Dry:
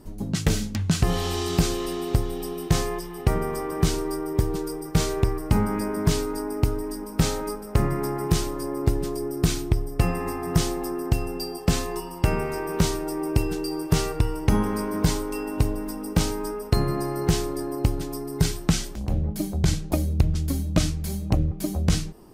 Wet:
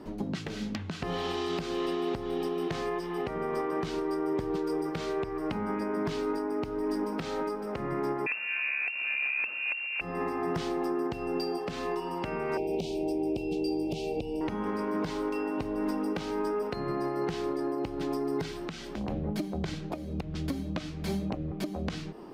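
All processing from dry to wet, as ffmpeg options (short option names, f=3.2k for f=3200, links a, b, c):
-filter_complex "[0:a]asettb=1/sr,asplit=3[a][b][c];[a]atrim=end=8.264[d];[b]atrim=start=8.26:end=10.01,asetpts=PTS-STARTPTS,afade=t=in:d=0.004:c=qsin,afade=t=out:st=1.746:d=0.004:c=qsin,acrusher=bits=3:mode=log:mix=0:aa=0.000001,lowpass=f=2.4k:t=q:w=0.5098,lowpass=f=2.4k:t=q:w=0.6013,lowpass=f=2.4k:t=q:w=0.9,lowpass=f=2.4k:t=q:w=2.563,afreqshift=-2800[e];[c]atrim=start=10.006[f];[d][e]acrossfade=d=0.004:c1=hsin:c2=qsin[g];[g][f]acrossfade=d=0.004:c1=qsin:c2=hsin,asettb=1/sr,asplit=3[h][i][j];[h]atrim=end=12.574[k];[i]atrim=start=12.57:end=14.41,asetpts=PTS-STARTPTS,afade=t=in:d=0.004:c=qsin,afade=t=out:st=1.836:d=0.004:c=qsin,asoftclip=type=hard:threshold=-13.5dB,aeval=exprs='val(0)+0.0158*(sin(2*PI*50*n/s)+sin(2*PI*2*50*n/s)/2+sin(2*PI*3*50*n/s)/3+sin(2*PI*4*50*n/s)/4+sin(2*PI*5*50*n/s)/5)':c=same,asuperstop=centerf=1400:order=12:qfactor=0.89[l];[j]atrim=start=14.406[m];[k][l]acrossfade=d=0.004:c1=hsin:c2=qsin[n];[n][m]acrossfade=d=0.004:c1=qsin:c2=hsin,acrossover=split=180 4300:gain=0.158 1 0.1[o][p][q];[o][p][q]amix=inputs=3:normalize=0,acompressor=threshold=-30dB:ratio=6,alimiter=level_in=4dB:limit=-24dB:level=0:latency=1:release=326,volume=-4dB,volume=6dB"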